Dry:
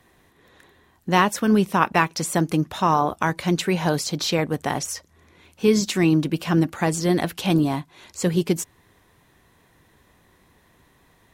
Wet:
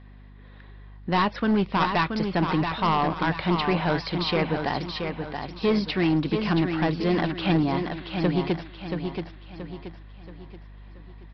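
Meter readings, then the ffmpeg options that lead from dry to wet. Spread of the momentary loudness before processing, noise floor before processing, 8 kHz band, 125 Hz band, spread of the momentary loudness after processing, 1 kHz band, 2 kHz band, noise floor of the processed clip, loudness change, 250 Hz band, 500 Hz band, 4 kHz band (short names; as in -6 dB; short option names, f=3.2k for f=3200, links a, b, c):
7 LU, -59 dBFS, under -25 dB, -2.5 dB, 15 LU, -2.5 dB, -2.0 dB, -47 dBFS, -3.5 dB, -2.5 dB, -3.0 dB, -2.0 dB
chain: -af "lowpass=f=3.9k:p=1,aeval=exprs='val(0)+0.00708*(sin(2*PI*50*n/s)+sin(2*PI*2*50*n/s)/2+sin(2*PI*3*50*n/s)/3+sin(2*PI*4*50*n/s)/4+sin(2*PI*5*50*n/s)/5)':c=same,equalizer=f=2k:w=0.43:g=4,aresample=11025,asoftclip=type=hard:threshold=-14.5dB,aresample=44100,aecho=1:1:678|1356|2034|2712|3390:0.501|0.205|0.0842|0.0345|0.0142,volume=-3dB"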